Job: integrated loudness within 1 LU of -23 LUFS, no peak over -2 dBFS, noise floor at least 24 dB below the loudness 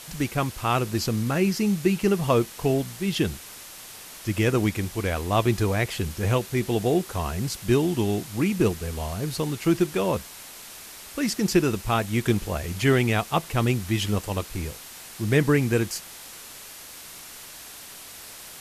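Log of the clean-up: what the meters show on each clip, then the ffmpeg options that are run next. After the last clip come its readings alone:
noise floor -43 dBFS; noise floor target -49 dBFS; loudness -25.0 LUFS; peak -7.5 dBFS; loudness target -23.0 LUFS
-> -af "afftdn=nr=6:nf=-43"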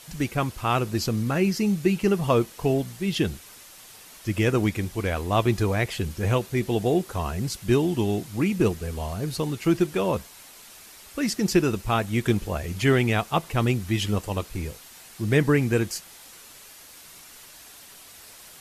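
noise floor -47 dBFS; noise floor target -49 dBFS
-> -af "afftdn=nr=6:nf=-47"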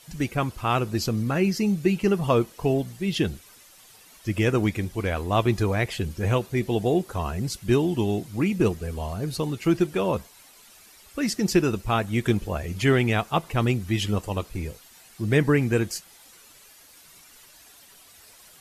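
noise floor -52 dBFS; loudness -25.0 LUFS; peak -7.5 dBFS; loudness target -23.0 LUFS
-> -af "volume=2dB"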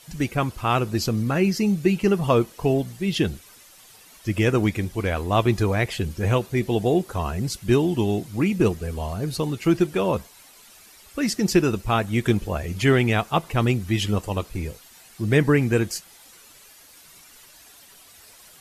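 loudness -23.0 LUFS; peak -5.5 dBFS; noise floor -50 dBFS

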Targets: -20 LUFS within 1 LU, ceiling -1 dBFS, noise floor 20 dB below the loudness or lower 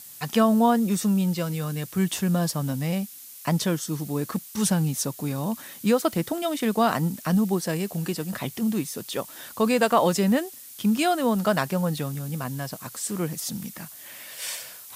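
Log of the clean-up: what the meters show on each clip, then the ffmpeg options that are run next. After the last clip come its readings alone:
noise floor -44 dBFS; noise floor target -46 dBFS; loudness -25.5 LUFS; peak -7.5 dBFS; loudness target -20.0 LUFS
-> -af "afftdn=nr=6:nf=-44"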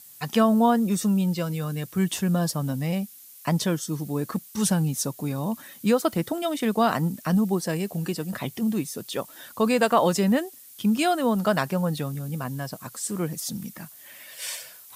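noise floor -48 dBFS; loudness -25.5 LUFS; peak -7.5 dBFS; loudness target -20.0 LUFS
-> -af "volume=5.5dB"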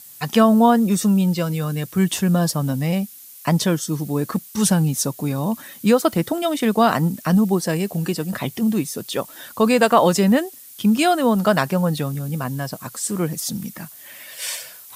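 loudness -20.0 LUFS; peak -2.0 dBFS; noise floor -42 dBFS

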